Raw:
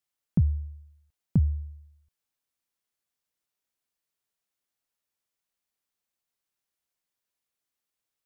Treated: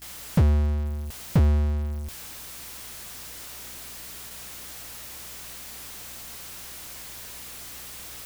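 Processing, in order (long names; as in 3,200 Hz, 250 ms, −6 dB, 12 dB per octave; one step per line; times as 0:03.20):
power curve on the samples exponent 0.35
noise gate with hold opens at −36 dBFS
mains hum 60 Hz, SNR 26 dB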